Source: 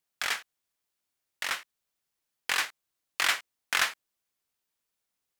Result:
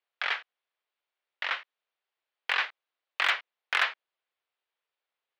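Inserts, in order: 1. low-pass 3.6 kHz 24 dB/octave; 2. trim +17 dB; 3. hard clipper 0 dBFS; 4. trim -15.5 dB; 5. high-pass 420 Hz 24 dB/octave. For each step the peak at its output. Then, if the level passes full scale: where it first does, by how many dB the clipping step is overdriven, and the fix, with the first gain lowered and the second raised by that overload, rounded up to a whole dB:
-12.0 dBFS, +5.0 dBFS, 0.0 dBFS, -15.5 dBFS, -12.0 dBFS; step 2, 5.0 dB; step 2 +12 dB, step 4 -10.5 dB

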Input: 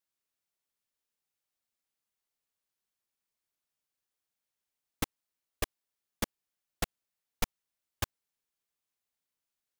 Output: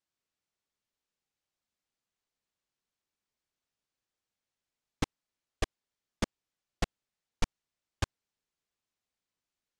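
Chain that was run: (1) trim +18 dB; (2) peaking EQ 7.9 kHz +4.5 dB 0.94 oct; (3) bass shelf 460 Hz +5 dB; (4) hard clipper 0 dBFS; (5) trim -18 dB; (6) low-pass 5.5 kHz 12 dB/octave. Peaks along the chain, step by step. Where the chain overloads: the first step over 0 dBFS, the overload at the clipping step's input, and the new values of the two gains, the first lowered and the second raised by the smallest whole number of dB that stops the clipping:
+2.5 dBFS, +3.0 dBFS, +6.0 dBFS, 0.0 dBFS, -18.0 dBFS, -17.5 dBFS; step 1, 6.0 dB; step 1 +12 dB, step 5 -12 dB

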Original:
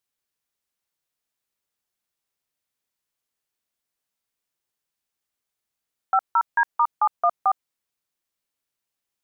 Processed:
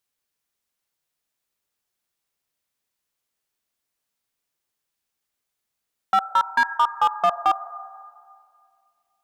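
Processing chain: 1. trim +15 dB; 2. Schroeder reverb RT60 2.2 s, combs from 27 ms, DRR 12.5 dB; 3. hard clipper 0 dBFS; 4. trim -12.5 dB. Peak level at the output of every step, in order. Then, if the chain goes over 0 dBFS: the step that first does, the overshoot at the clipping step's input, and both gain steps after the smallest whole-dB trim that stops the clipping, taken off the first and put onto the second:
+3.5 dBFS, +4.5 dBFS, 0.0 dBFS, -12.5 dBFS; step 1, 4.5 dB; step 1 +10 dB, step 4 -7.5 dB

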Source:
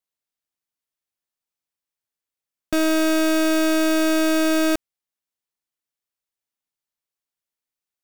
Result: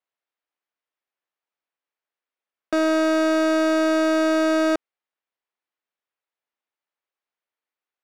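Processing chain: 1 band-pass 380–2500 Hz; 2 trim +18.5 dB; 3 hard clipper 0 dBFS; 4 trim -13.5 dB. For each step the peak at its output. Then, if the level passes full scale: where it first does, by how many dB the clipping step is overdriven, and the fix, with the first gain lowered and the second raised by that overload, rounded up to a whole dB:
-13.5 dBFS, +5.0 dBFS, 0.0 dBFS, -13.5 dBFS; step 2, 5.0 dB; step 2 +13.5 dB, step 4 -8.5 dB

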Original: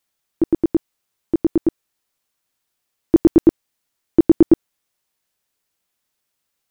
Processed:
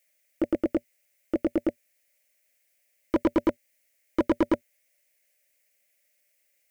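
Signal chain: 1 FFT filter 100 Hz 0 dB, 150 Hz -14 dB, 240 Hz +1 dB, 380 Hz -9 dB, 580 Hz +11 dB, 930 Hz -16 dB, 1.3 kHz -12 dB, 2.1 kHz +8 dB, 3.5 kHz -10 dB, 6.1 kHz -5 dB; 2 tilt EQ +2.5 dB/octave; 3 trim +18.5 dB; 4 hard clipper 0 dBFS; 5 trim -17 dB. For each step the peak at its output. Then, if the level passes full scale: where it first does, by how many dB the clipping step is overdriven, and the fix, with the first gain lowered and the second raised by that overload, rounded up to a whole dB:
-4.5 dBFS, -8.5 dBFS, +10.0 dBFS, 0.0 dBFS, -17.0 dBFS; step 3, 10.0 dB; step 3 +8.5 dB, step 5 -7 dB

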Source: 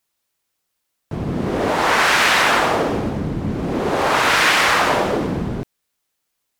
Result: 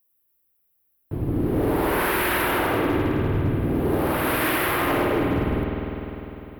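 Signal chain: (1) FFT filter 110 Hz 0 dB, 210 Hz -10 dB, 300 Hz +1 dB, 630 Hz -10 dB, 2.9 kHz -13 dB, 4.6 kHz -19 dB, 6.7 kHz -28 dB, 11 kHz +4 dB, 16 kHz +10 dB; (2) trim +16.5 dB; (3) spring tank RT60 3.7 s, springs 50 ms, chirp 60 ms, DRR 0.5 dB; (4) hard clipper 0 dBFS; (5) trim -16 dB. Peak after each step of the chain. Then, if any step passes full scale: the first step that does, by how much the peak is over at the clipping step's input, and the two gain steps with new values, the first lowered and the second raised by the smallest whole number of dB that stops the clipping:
-13.0 dBFS, +3.5 dBFS, +7.5 dBFS, 0.0 dBFS, -16.0 dBFS; step 2, 7.5 dB; step 2 +8.5 dB, step 5 -8 dB

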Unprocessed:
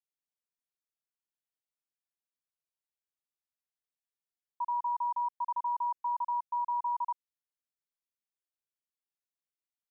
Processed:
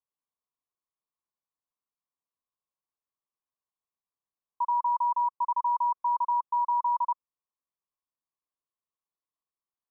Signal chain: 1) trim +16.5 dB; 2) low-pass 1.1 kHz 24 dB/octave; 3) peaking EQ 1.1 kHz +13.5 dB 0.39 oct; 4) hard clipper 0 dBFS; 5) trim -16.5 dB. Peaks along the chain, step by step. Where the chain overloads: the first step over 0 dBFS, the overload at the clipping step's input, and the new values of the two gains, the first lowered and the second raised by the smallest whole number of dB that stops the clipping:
-11.0 dBFS, -12.5 dBFS, -5.0 dBFS, -5.0 dBFS, -21.5 dBFS; nothing clips

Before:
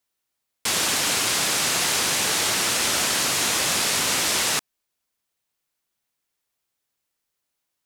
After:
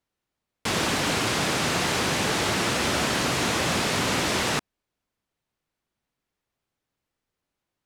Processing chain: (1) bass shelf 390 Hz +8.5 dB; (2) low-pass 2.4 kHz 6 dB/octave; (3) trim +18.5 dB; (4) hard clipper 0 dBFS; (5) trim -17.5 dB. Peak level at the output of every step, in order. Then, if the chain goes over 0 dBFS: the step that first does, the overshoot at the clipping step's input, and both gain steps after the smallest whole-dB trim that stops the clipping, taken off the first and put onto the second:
-9.0 dBFS, -13.0 dBFS, +5.5 dBFS, 0.0 dBFS, -17.5 dBFS; step 3, 5.5 dB; step 3 +12.5 dB, step 5 -11.5 dB

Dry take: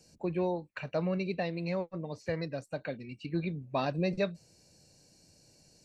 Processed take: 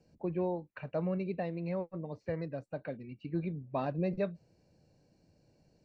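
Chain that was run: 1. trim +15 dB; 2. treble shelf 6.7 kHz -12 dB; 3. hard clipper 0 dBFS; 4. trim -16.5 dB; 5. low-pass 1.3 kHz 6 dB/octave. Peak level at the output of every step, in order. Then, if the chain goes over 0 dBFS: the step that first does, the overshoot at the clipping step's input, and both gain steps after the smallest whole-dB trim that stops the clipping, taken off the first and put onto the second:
-2.5 dBFS, -3.0 dBFS, -3.0 dBFS, -19.5 dBFS, -21.0 dBFS; nothing clips

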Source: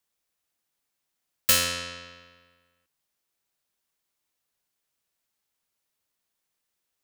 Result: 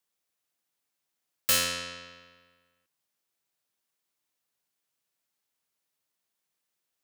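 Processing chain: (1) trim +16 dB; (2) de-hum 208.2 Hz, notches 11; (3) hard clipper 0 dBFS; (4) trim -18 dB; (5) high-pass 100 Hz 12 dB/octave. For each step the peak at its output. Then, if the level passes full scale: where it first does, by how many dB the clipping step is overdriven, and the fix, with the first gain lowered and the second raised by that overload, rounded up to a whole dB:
+8.5 dBFS, +8.5 dBFS, 0.0 dBFS, -18.0 dBFS, -16.5 dBFS; step 1, 8.5 dB; step 1 +7 dB, step 4 -9 dB

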